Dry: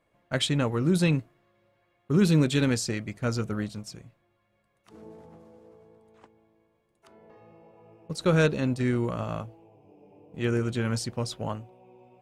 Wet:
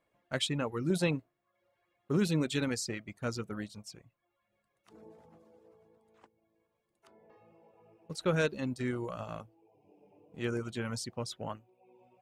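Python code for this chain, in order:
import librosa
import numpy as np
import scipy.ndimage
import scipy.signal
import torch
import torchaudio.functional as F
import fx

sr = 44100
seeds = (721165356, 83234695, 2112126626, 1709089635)

y = fx.low_shelf(x, sr, hz=170.0, db=-6.0)
y = fx.dereverb_blind(y, sr, rt60_s=0.64)
y = fx.dynamic_eq(y, sr, hz=660.0, q=0.76, threshold_db=-45.0, ratio=4.0, max_db=6, at=(0.9, 2.17))
y = F.gain(torch.from_numpy(y), -5.0).numpy()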